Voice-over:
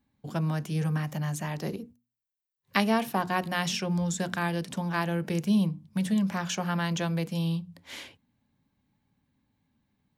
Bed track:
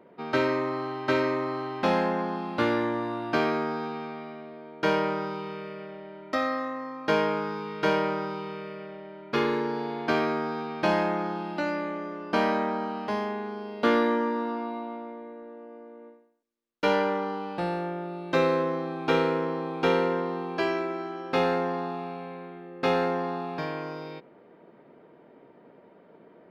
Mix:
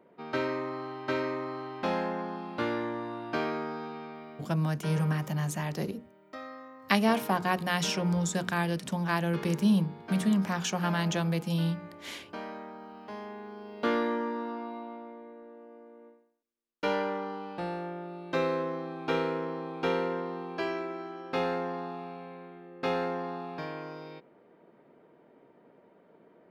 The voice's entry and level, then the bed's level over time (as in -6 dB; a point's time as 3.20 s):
4.15 s, 0.0 dB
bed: 4.37 s -6 dB
4.58 s -15.5 dB
12.78 s -15.5 dB
13.82 s -5.5 dB